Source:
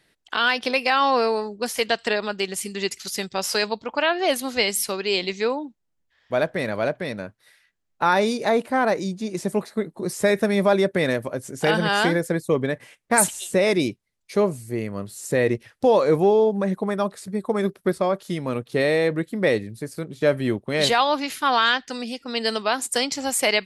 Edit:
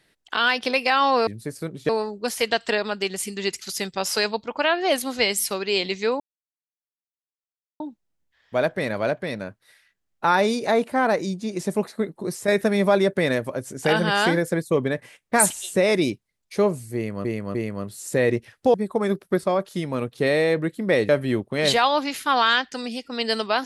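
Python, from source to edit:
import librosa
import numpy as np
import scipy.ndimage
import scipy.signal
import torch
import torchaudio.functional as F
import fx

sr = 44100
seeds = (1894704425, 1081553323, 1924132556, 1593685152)

y = fx.edit(x, sr, fx.insert_silence(at_s=5.58, length_s=1.6),
    fx.fade_out_to(start_s=9.93, length_s=0.33, curve='qsin', floor_db=-7.0),
    fx.repeat(start_s=14.73, length_s=0.3, count=3),
    fx.cut(start_s=15.92, length_s=1.36),
    fx.move(start_s=19.63, length_s=0.62, to_s=1.27), tone=tone)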